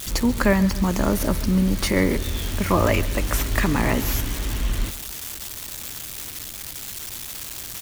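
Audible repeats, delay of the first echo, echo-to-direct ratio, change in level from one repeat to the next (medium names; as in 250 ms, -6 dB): 2, 136 ms, -16.5 dB, -6.5 dB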